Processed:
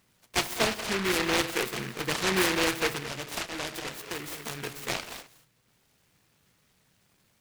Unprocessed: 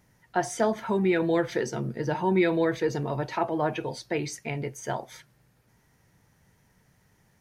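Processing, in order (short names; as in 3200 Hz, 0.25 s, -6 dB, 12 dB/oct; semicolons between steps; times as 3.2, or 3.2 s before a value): 0.64–1.16 half-wave gain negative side -3 dB; non-linear reverb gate 0.25 s rising, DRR 10 dB; 2.97–4.64 compressor 6:1, threshold -30 dBFS, peak gain reduction 9.5 dB; low shelf 210 Hz -11 dB; noise-modulated delay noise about 1700 Hz, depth 0.33 ms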